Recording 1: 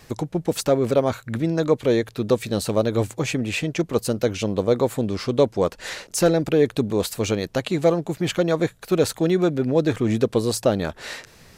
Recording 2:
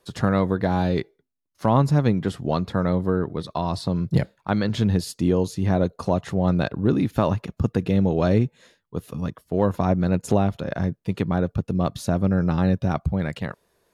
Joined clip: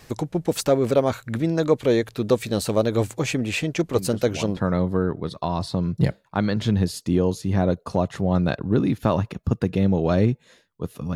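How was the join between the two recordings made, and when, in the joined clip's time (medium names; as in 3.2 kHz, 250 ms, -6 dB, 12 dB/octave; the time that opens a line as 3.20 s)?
recording 1
3.95 s: add recording 2 from 2.08 s 0.62 s -11 dB
4.57 s: go over to recording 2 from 2.70 s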